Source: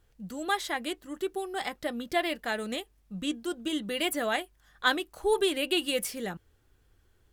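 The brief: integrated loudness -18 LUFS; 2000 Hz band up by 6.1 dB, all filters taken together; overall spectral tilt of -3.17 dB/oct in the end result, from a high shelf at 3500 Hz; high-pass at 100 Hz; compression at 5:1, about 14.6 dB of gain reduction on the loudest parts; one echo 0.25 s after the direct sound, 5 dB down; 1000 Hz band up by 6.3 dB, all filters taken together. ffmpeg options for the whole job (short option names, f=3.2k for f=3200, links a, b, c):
-af "highpass=100,equalizer=f=1k:t=o:g=7.5,equalizer=f=2k:t=o:g=6,highshelf=f=3.5k:g=-3,acompressor=threshold=-30dB:ratio=5,aecho=1:1:250:0.562,volume=16dB"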